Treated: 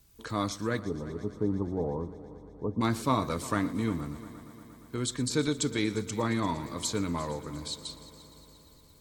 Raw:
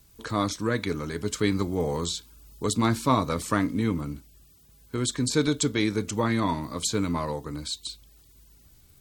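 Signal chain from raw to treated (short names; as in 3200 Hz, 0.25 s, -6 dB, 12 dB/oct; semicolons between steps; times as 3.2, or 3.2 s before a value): 0.79–2.81 steep low-pass 1000 Hz 48 dB/oct; multi-head echo 0.117 s, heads first and third, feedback 68%, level -18.5 dB; gain -4.5 dB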